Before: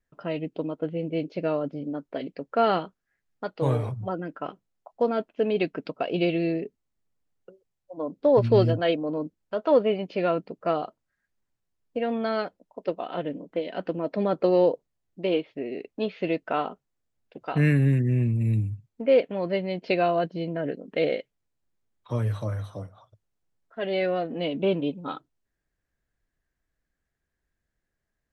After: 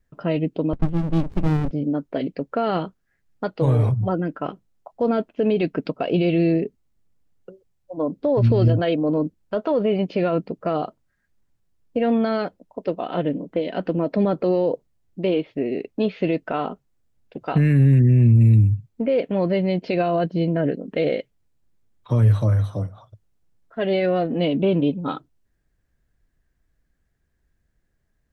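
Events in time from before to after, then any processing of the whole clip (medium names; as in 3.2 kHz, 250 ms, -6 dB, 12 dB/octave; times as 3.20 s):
0.73–1.71 s: sliding maximum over 65 samples
whole clip: peak limiter -20 dBFS; bass shelf 290 Hz +9 dB; trim +4.5 dB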